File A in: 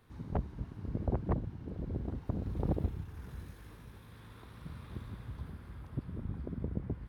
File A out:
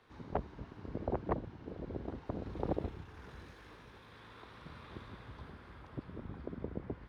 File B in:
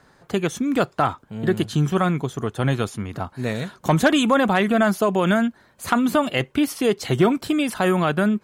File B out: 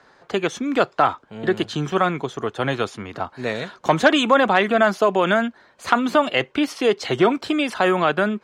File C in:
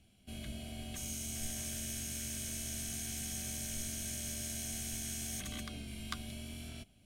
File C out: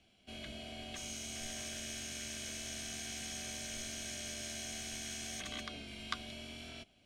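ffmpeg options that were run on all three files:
-filter_complex "[0:a]acrossover=split=310 6400:gain=0.251 1 0.112[s0][s1][s2];[s0][s1][s2]amix=inputs=3:normalize=0,volume=1.5"

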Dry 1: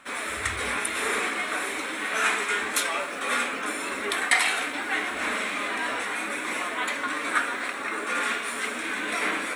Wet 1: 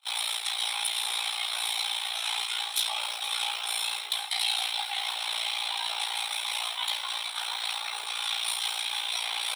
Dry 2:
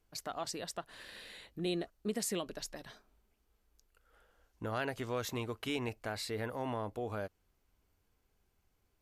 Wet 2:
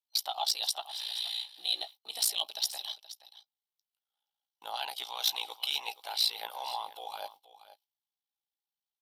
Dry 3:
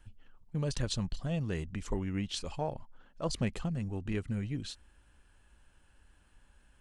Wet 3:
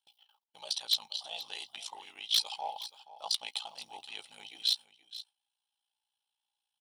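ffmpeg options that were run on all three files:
-filter_complex "[0:a]agate=range=0.0447:threshold=0.00251:ratio=16:detection=peak,superequalizer=13b=2.24:15b=0.282:16b=0.631,areverse,acompressor=threshold=0.0178:ratio=8,areverse,flanger=delay=6.1:depth=4.2:regen=30:speed=0.35:shape=sinusoidal,aeval=exprs='val(0)*sin(2*PI*29*n/s)':c=same,highpass=f=820:t=q:w=9.7,aexciter=amount=6.1:drive=8.4:freq=2600,asoftclip=type=hard:threshold=0.106,asplit=2[s0][s1];[s1]aecho=0:1:475:0.168[s2];[s0][s2]amix=inputs=2:normalize=0"

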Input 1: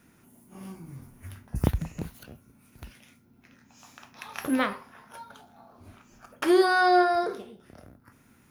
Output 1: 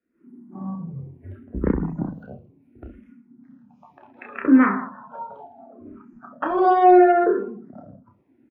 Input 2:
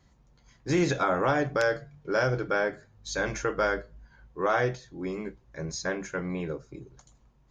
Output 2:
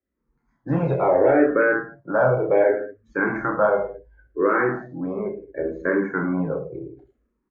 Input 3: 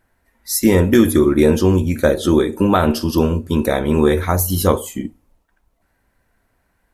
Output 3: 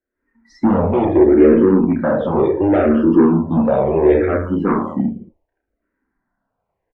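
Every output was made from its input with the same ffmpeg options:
-filter_complex "[0:a]acrossover=split=5300[s0][s1];[s1]acompressor=threshold=0.00447:ratio=4:attack=1:release=60[s2];[s0][s2]amix=inputs=2:normalize=0,asplit=2[s3][s4];[s4]aecho=0:1:30|66|109.2|161|223.2:0.631|0.398|0.251|0.158|0.1[s5];[s3][s5]amix=inputs=2:normalize=0,asoftclip=type=tanh:threshold=0.2,acrossover=split=240 2300:gain=0.141 1 0.0794[s6][s7][s8];[s6][s7][s8]amix=inputs=3:normalize=0,dynaudnorm=f=120:g=3:m=4.47,lowshelf=f=450:g=11,afftdn=nr=17:nf=-32,asplit=2[s9][s10];[s10]afreqshift=-0.7[s11];[s9][s11]amix=inputs=2:normalize=1,volume=0.596"

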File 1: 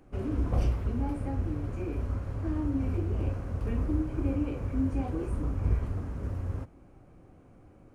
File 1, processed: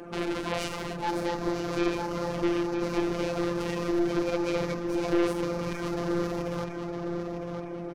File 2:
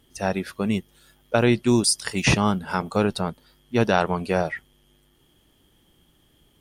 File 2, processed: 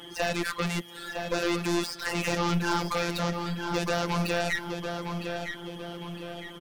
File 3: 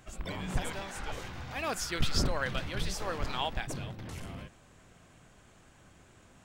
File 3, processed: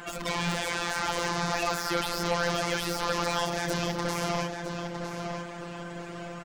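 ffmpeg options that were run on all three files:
-filter_complex "[0:a]acrossover=split=1600|5700[s0][s1][s2];[s0]acompressor=threshold=0.0224:ratio=4[s3];[s1]acompressor=threshold=0.01:ratio=4[s4];[s2]acompressor=threshold=0.00251:ratio=4[s5];[s3][s4][s5]amix=inputs=3:normalize=0,asplit=2[s6][s7];[s7]highpass=f=720:p=1,volume=63.1,asoftclip=type=tanh:threshold=0.158[s8];[s6][s8]amix=inputs=2:normalize=0,lowpass=f=1800:p=1,volume=0.501,afftfilt=real='hypot(re,im)*cos(PI*b)':imag='0':win_size=1024:overlap=0.75,aeval=exprs='0.282*(cos(1*acos(clip(val(0)/0.282,-1,1)))-cos(1*PI/2))+0.0282*(cos(8*acos(clip(val(0)/0.282,-1,1)))-cos(8*PI/2))':c=same,asplit=2[s9][s10];[s10]adelay=958,lowpass=f=4300:p=1,volume=0.501,asplit=2[s11][s12];[s12]adelay=958,lowpass=f=4300:p=1,volume=0.46,asplit=2[s13][s14];[s14]adelay=958,lowpass=f=4300:p=1,volume=0.46,asplit=2[s15][s16];[s16]adelay=958,lowpass=f=4300:p=1,volume=0.46,asplit=2[s17][s18];[s18]adelay=958,lowpass=f=4300:p=1,volume=0.46,asplit=2[s19][s20];[s20]adelay=958,lowpass=f=4300:p=1,volume=0.46[s21];[s9][s11][s13][s15][s17][s19][s21]amix=inputs=7:normalize=0"

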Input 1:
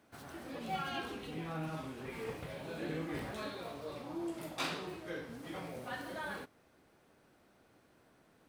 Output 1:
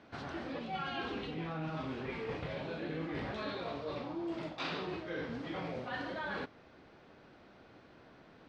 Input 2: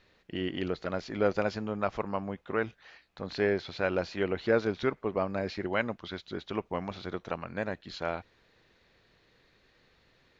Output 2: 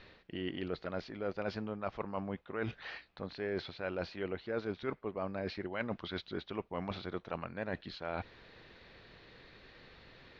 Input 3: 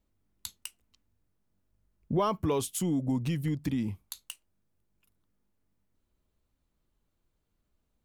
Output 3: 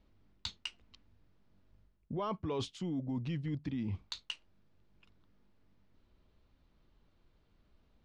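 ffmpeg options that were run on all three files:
-af "lowpass=f=4800:w=0.5412,lowpass=f=4800:w=1.3066,areverse,acompressor=threshold=0.00562:ratio=5,areverse,volume=2.66"

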